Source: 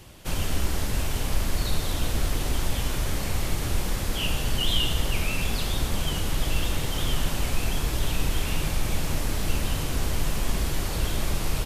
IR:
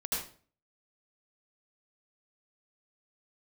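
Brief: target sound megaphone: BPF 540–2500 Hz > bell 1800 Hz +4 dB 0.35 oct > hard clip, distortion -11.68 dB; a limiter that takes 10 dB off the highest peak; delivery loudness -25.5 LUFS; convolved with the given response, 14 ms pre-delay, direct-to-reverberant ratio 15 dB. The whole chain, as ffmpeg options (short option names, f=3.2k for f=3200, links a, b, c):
-filter_complex "[0:a]alimiter=limit=-19dB:level=0:latency=1,asplit=2[a][b];[1:a]atrim=start_sample=2205,adelay=14[c];[b][c]afir=irnorm=-1:irlink=0,volume=-19.5dB[d];[a][d]amix=inputs=2:normalize=0,highpass=540,lowpass=2.5k,equalizer=f=1.8k:t=o:w=0.35:g=4,asoftclip=type=hard:threshold=-37dB,volume=14.5dB"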